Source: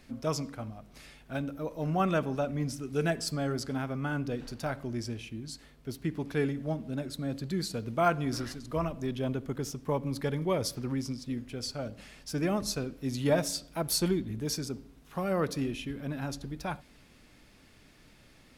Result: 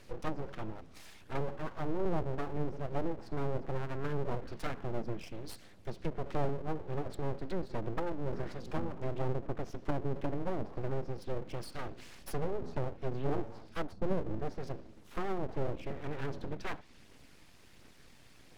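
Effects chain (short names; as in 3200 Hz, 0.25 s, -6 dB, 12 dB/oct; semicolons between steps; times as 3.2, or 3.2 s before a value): phaser 1.4 Hz, delay 1.3 ms, feedback 30%; treble ducked by the level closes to 350 Hz, closed at -25.5 dBFS; full-wave rectifier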